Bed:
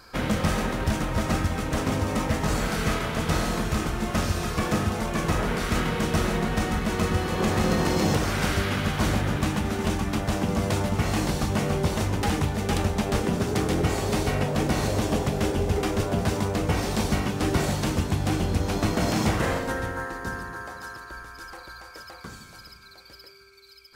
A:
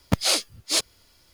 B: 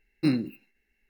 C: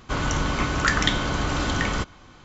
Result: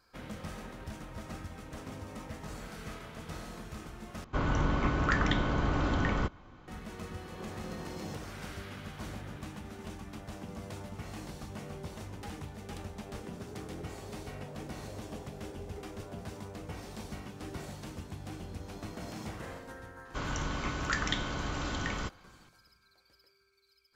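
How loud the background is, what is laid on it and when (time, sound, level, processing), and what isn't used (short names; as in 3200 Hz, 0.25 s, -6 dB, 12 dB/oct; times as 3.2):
bed -18 dB
4.24 replace with C -3.5 dB + LPF 1200 Hz 6 dB/oct
20.05 add C -10.5 dB
not used: A, B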